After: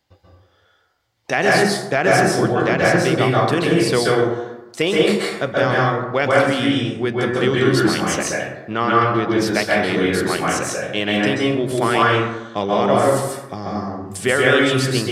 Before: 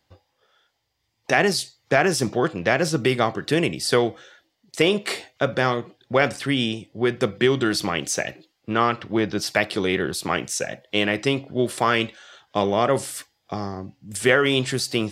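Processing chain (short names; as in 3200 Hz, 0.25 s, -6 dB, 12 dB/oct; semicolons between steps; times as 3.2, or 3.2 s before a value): plate-style reverb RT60 1 s, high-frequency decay 0.4×, pre-delay 0.12 s, DRR -4.5 dB; gain -1 dB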